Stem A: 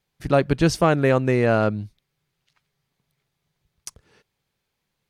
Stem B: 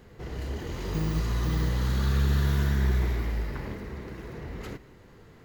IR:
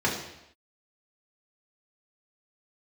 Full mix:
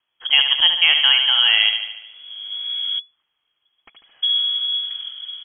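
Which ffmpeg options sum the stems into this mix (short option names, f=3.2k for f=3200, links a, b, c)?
-filter_complex "[0:a]volume=2dB,asplit=3[a][b][c];[b]volume=-7.5dB[d];[1:a]asubboost=boost=5.5:cutoff=240,adelay=1350,volume=-7dB,asplit=3[e][f][g];[e]atrim=end=2.99,asetpts=PTS-STARTPTS,afade=t=out:st=2.986:d=0.004:c=hsin[h];[f]atrim=start=2.99:end=4.22,asetpts=PTS-STARTPTS,volume=0[i];[g]atrim=start=4.22,asetpts=PTS-STARTPTS,afade=t=in:d=0.004:c=hsin[j];[h][i][j]concat=n=3:v=0:a=1[k];[c]apad=whole_len=299644[l];[k][l]sidechaincompress=threshold=-29dB:ratio=5:attack=5.8:release=936[m];[d]aecho=0:1:73|146|219|292|365|438|511|584|657:1|0.59|0.348|0.205|0.121|0.0715|0.0422|0.0249|0.0147[n];[a][m][n]amix=inputs=3:normalize=0,lowpass=f=2.9k:t=q:w=0.5098,lowpass=f=2.9k:t=q:w=0.6013,lowpass=f=2.9k:t=q:w=0.9,lowpass=f=2.9k:t=q:w=2.563,afreqshift=-3400"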